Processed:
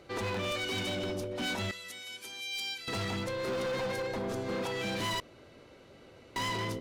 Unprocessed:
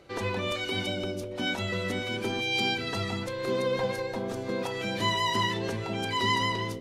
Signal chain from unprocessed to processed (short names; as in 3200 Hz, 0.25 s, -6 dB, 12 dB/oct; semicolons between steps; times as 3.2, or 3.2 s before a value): 1.71–2.88 pre-emphasis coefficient 0.97; hard clip -31 dBFS, distortion -8 dB; 5.2–6.36 room tone